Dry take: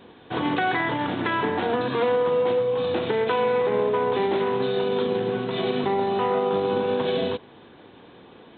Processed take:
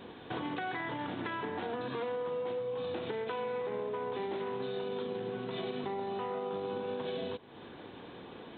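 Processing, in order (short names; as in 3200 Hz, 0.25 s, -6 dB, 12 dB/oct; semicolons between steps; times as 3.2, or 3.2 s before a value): compressor 3:1, threshold -39 dBFS, peak gain reduction 14.5 dB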